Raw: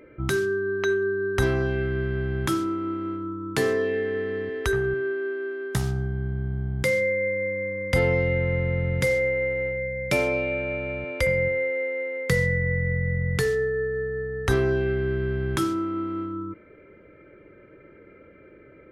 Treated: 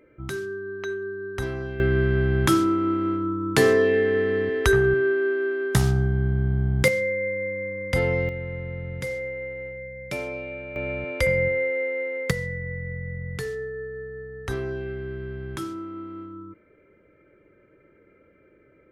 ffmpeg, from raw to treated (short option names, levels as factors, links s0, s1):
-af "asetnsamples=n=441:p=0,asendcmd='1.8 volume volume 5.5dB;6.88 volume volume -1.5dB;8.29 volume volume -8dB;10.76 volume volume 1dB;12.31 volume volume -7.5dB',volume=0.447"